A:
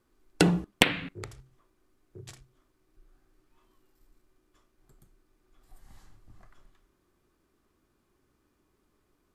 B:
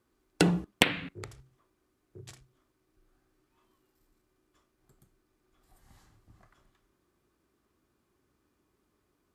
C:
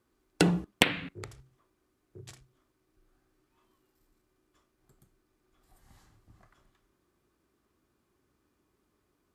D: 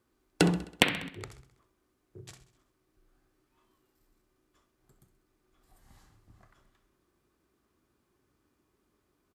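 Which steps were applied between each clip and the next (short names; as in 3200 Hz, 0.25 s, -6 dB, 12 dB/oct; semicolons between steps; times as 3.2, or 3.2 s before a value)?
HPF 46 Hz; gain -2 dB
nothing audible
feedback echo 65 ms, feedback 57%, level -14.5 dB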